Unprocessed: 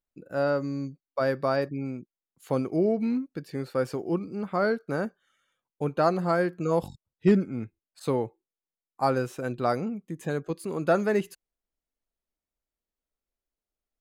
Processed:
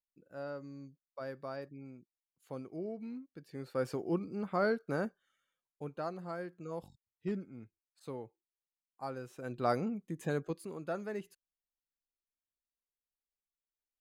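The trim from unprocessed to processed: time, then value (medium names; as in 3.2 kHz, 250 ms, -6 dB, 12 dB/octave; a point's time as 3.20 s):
3.29 s -16.5 dB
3.89 s -5.5 dB
5.05 s -5.5 dB
6.11 s -16.5 dB
9.20 s -16.5 dB
9.71 s -4.5 dB
10.43 s -4.5 dB
10.85 s -15 dB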